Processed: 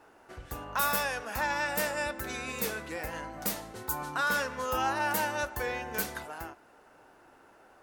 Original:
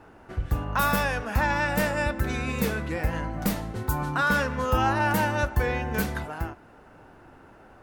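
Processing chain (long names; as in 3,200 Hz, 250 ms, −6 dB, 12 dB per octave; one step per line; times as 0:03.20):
bass and treble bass −13 dB, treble +7 dB
level −5 dB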